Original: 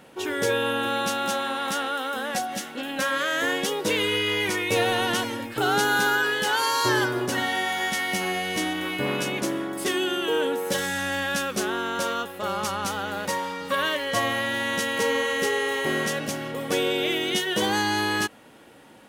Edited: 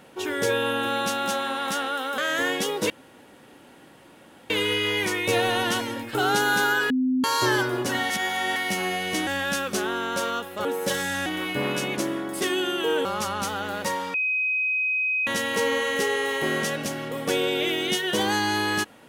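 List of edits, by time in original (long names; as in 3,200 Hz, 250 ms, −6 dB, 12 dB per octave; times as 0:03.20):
0:02.18–0:03.21: remove
0:03.93: splice in room tone 1.60 s
0:06.33–0:06.67: beep over 257 Hz −19.5 dBFS
0:07.53–0:07.99: reverse
0:08.70–0:10.49: swap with 0:11.10–0:12.48
0:13.57–0:14.70: beep over 2,520 Hz −21.5 dBFS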